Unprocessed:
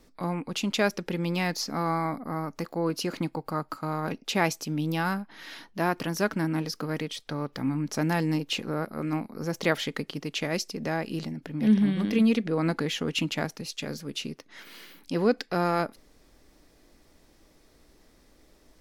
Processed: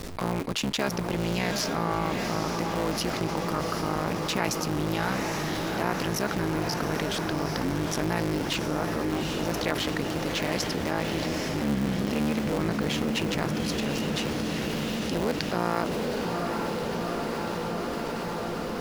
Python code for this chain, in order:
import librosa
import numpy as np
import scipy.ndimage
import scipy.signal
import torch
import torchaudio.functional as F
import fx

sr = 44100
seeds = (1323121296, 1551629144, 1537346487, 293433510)

y = fx.cycle_switch(x, sr, every=3, mode='muted')
y = fx.echo_diffused(y, sr, ms=794, feedback_pct=69, wet_db=-7.5)
y = fx.env_flatten(y, sr, amount_pct=70)
y = y * librosa.db_to_amplitude(-6.5)